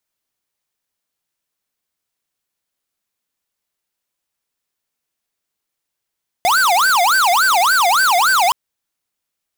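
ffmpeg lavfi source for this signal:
-f lavfi -i "aevalsrc='0.211*(2*lt(mod((1124.5*t-435.5/(2*PI*3.5)*sin(2*PI*3.5*t)),1),0.5)-1)':d=2.07:s=44100"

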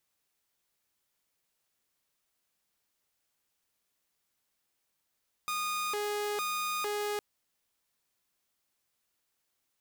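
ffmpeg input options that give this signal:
-f lavfi -i "aevalsrc='0.0376*(2*mod((822.5*t+407.5/1.1*(0.5-abs(mod(1.1*t,1)-0.5))),1)-1)':d=1.71:s=44100"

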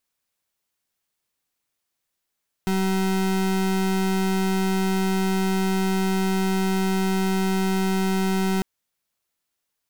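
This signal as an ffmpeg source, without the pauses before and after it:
-f lavfi -i "aevalsrc='0.0794*(2*lt(mod(190*t,1),0.33)-1)':d=5.95:s=44100"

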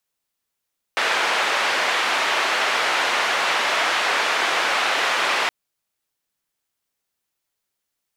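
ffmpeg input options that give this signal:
-f lavfi -i "anoisesrc=c=white:d=4.52:r=44100:seed=1,highpass=f=590,lowpass=f=2300,volume=-5.5dB"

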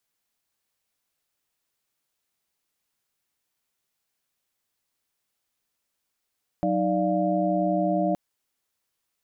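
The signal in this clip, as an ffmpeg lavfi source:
-f lavfi -i "aevalsrc='0.0473*(sin(2*PI*185*t)+sin(2*PI*311.13*t)+sin(2*PI*587.33*t)+sin(2*PI*698.46*t))':d=1.52:s=44100"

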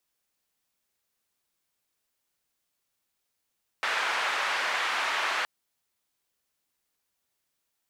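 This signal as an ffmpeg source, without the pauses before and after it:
-f lavfi -i "anoisesrc=c=white:d=1.62:r=44100:seed=1,highpass=f=970,lowpass=f=1800,volume=-10.3dB"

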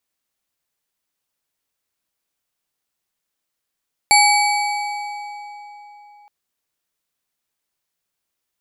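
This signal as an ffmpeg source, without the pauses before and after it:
-f lavfi -i "aevalsrc='0.266*pow(10,-3*t/3.78)*sin(2*PI*828*t)+0.211*pow(10,-3*t/2.788)*sin(2*PI*2282.8*t)+0.168*pow(10,-3*t/2.279)*sin(2*PI*4474.5*t)+0.133*pow(10,-3*t/1.96)*sin(2*PI*7396.5*t)+0.106*pow(10,-3*t/1.738)*sin(2*PI*11045.5*t)':d=2.17:s=44100"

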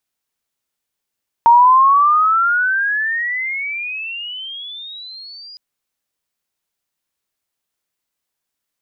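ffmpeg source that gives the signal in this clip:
-f lavfi -i "aevalsrc='pow(10,(-5-29*t/4.11)/20)*sin(2*PI*923*4.11/(29*log(2)/12)*(exp(29*log(2)/12*t/4.11)-1))':d=4.11:s=44100"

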